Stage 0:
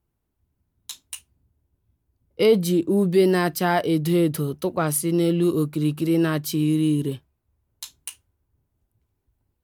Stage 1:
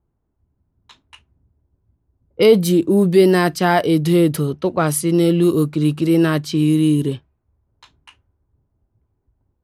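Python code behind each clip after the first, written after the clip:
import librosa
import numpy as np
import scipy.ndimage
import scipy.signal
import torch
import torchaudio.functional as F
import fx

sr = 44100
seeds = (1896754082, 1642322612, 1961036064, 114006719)

y = fx.env_lowpass(x, sr, base_hz=1200.0, full_db=-17.5)
y = y * 10.0 ** (5.5 / 20.0)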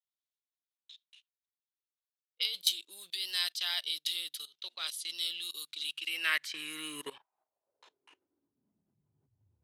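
y = fx.level_steps(x, sr, step_db=19)
y = fx.filter_sweep_highpass(y, sr, from_hz=3600.0, to_hz=95.0, start_s=5.8, end_s=9.52, q=4.2)
y = y * 10.0 ** (-3.5 / 20.0)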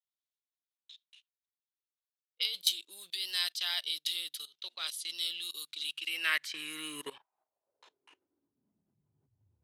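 y = x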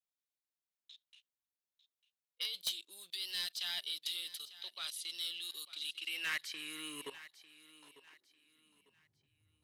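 y = 10.0 ** (-25.5 / 20.0) * np.tanh(x / 10.0 ** (-25.5 / 20.0))
y = fx.echo_feedback(y, sr, ms=898, feedback_pct=31, wet_db=-16.5)
y = y * 10.0 ** (-3.5 / 20.0)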